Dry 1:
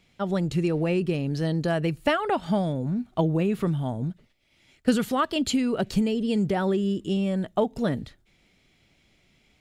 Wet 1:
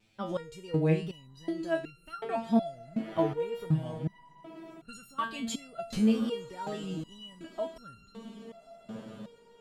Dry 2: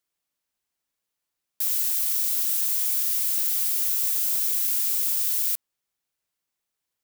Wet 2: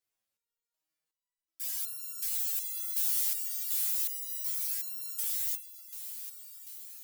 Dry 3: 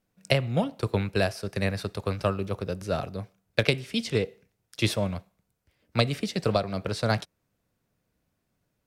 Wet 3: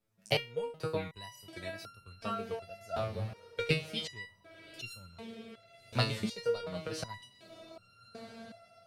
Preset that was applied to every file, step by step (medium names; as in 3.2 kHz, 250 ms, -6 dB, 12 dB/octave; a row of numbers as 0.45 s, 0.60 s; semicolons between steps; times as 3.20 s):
wow and flutter 130 cents; echo that smears into a reverb 1176 ms, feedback 54%, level -14 dB; resonator arpeggio 2.7 Hz 110–1400 Hz; trim +6 dB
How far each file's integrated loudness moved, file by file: -7.0 LU, -9.5 LU, -9.0 LU